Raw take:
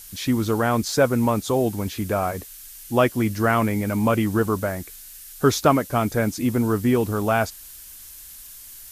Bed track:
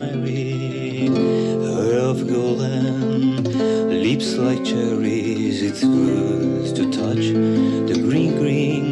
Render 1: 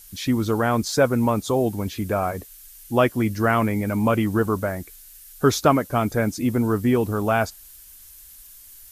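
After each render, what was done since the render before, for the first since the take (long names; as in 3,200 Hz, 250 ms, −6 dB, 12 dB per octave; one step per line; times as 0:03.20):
broadband denoise 6 dB, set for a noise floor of −42 dBFS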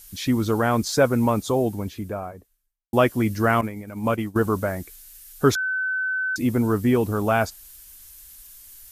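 0:01.32–0:02.93: fade out and dull
0:03.61–0:04.36: downward expander −16 dBFS
0:05.55–0:06.36: beep over 1,520 Hz −22 dBFS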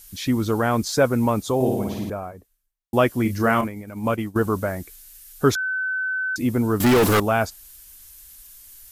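0:01.55–0:02.10: flutter between parallel walls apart 9.3 metres, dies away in 1.1 s
0:03.22–0:03.68: double-tracking delay 31 ms −7.5 dB
0:06.80–0:07.20: mid-hump overdrive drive 34 dB, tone 6,000 Hz, clips at −10 dBFS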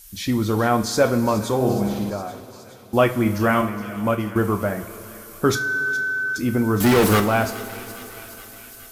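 delay with a high-pass on its return 417 ms, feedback 70%, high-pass 2,000 Hz, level −13.5 dB
coupled-rooms reverb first 0.3 s, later 4 s, from −18 dB, DRR 5 dB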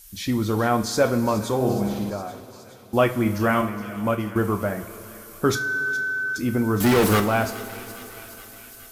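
level −2 dB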